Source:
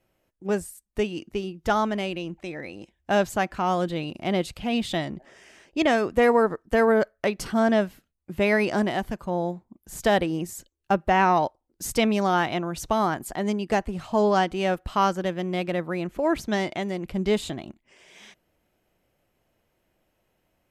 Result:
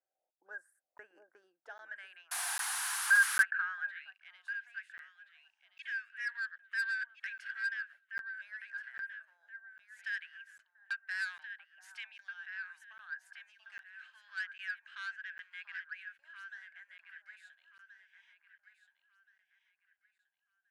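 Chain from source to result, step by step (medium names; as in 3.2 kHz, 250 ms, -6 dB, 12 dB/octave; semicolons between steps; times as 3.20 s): in parallel at -0.5 dB: compression, threshold -29 dBFS, peak gain reduction 13.5 dB; on the sum: phase shifter stages 2, 0.25 Hz, lowest notch 150–3400 Hz; auto-wah 760–1600 Hz, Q 10, up, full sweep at -28 dBFS; on a send: echo whose repeats swap between lows and highs 688 ms, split 810 Hz, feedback 52%, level -4.5 dB; on the sum: painted sound noise, 2.31–3.43 s, 690–12000 Hz -35 dBFS; saturation -30.5 dBFS, distortion -11 dB; graphic EQ with 31 bands 200 Hz -6 dB, 400 Hz -12 dB, 1.6 kHz +11 dB, 10 kHz +9 dB; high-pass sweep 430 Hz -> 2.6 kHz, 1.48–4.53 s; bass shelf 130 Hz -11 dB; crackling interface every 0.80 s, samples 512, zero, from 0.98 s; trim -4 dB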